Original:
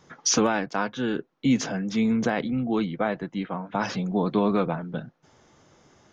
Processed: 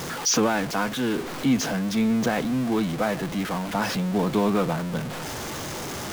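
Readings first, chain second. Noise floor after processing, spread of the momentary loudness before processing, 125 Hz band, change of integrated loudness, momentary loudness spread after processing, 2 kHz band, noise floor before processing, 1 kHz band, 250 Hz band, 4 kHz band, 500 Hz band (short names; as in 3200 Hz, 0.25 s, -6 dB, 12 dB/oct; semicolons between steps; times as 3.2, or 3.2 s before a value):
-33 dBFS, 9 LU, +2.5 dB, +1.0 dB, 9 LU, +2.5 dB, -64 dBFS, +1.5 dB, +1.0 dB, +3.5 dB, +1.0 dB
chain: zero-crossing step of -25.5 dBFS; gain -1.5 dB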